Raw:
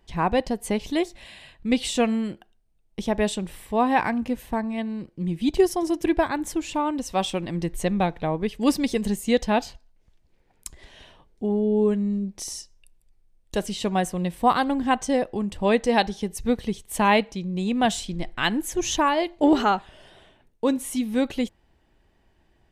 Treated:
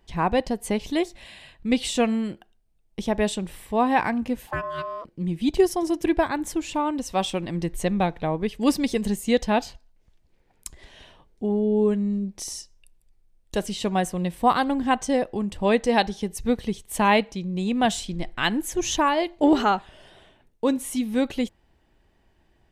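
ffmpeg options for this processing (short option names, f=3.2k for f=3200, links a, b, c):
-filter_complex "[0:a]asettb=1/sr,asplit=3[a][b][c];[a]atrim=end=4.474[d];[b]atrim=start=4.47:end=5.05,asetpts=PTS-STARTPTS,afade=t=in:d=0.004:c=qsin,afade=t=out:st=0.576:d=0.004:c=qsin,aeval=exprs='val(0)*sin(2*PI*830*n/s)':c=same[e];[c]atrim=start=5.046[f];[d][e]acrossfade=d=0.004:c1=hsin:c2=qsin[g];[g][f]acrossfade=d=0.004:c1=qsin:c2=hsin"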